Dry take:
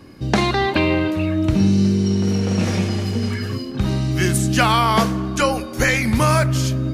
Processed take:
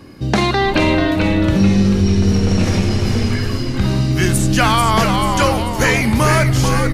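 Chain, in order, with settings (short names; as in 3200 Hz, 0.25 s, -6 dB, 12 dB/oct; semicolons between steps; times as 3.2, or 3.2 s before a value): frequency-shifting echo 0.439 s, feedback 45%, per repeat -110 Hz, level -5 dB; in parallel at -2 dB: limiter -11 dBFS, peak gain reduction 9 dB; on the sum: gain -1.5 dB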